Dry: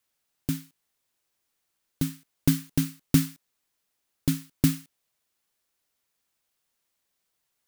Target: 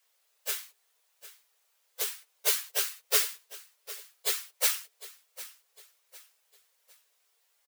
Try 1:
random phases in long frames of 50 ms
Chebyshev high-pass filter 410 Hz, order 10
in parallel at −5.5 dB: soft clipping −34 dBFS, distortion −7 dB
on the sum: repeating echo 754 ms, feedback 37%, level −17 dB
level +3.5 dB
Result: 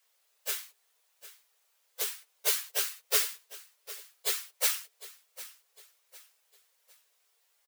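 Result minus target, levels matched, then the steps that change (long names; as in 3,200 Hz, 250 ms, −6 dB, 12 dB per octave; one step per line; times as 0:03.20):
soft clipping: distortion +11 dB
change: soft clipping −23 dBFS, distortion −18 dB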